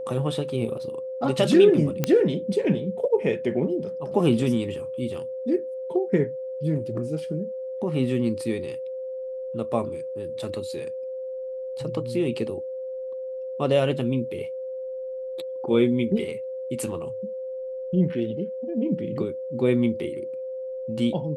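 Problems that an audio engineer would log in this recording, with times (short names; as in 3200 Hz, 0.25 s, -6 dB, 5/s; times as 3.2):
tone 520 Hz -30 dBFS
2.04 pop -8 dBFS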